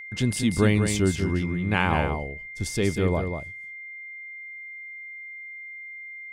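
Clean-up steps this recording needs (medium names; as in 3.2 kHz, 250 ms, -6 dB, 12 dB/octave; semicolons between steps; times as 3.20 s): band-stop 2.1 kHz, Q 30; inverse comb 190 ms -6.5 dB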